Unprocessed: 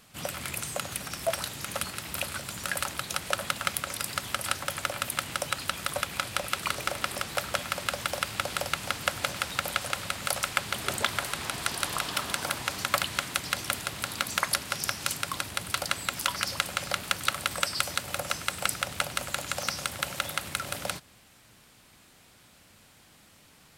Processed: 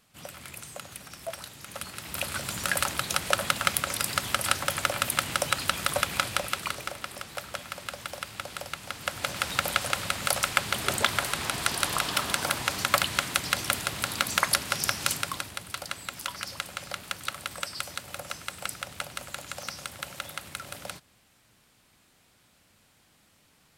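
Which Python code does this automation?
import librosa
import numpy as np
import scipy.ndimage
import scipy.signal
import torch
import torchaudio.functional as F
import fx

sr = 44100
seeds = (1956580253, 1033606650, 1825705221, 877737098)

y = fx.gain(x, sr, db=fx.line((1.63, -8.0), (2.45, 4.0), (6.22, 4.0), (7.02, -6.5), (8.87, -6.5), (9.51, 3.0), (15.13, 3.0), (15.64, -6.0)))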